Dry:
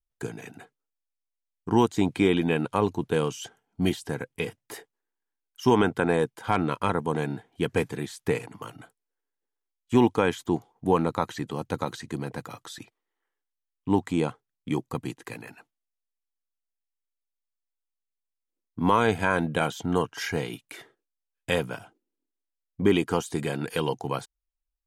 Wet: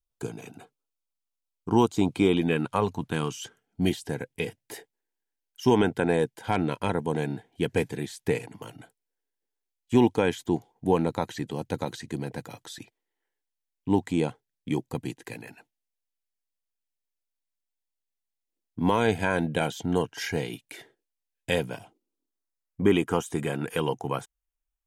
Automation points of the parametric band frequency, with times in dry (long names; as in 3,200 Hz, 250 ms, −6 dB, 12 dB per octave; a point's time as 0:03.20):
parametric band −13 dB 0.34 octaves
0:02.34 1,800 Hz
0:02.80 280 Hz
0:03.84 1,200 Hz
0:21.67 1,200 Hz
0:22.89 4,400 Hz